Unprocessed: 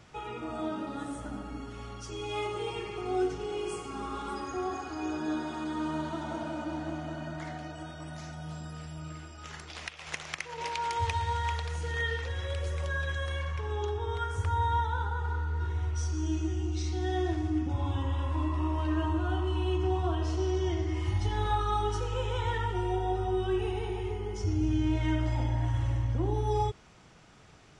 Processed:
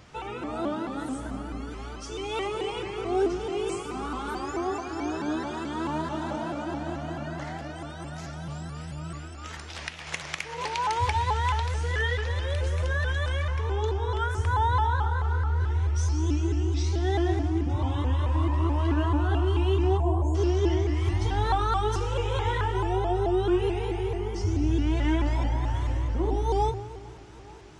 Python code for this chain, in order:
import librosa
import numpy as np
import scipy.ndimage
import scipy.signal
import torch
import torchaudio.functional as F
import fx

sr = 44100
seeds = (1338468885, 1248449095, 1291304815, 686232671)

p1 = fx.spec_erase(x, sr, start_s=19.98, length_s=0.37, low_hz=1100.0, high_hz=6600.0)
p2 = p1 + fx.echo_bbd(p1, sr, ms=442, stages=4096, feedback_pct=78, wet_db=-22.5, dry=0)
p3 = fx.rev_plate(p2, sr, seeds[0], rt60_s=1.7, hf_ratio=0.75, predelay_ms=0, drr_db=10.0)
p4 = fx.vibrato_shape(p3, sr, shape='saw_up', rate_hz=4.6, depth_cents=160.0)
y = F.gain(torch.from_numpy(p4), 3.5).numpy()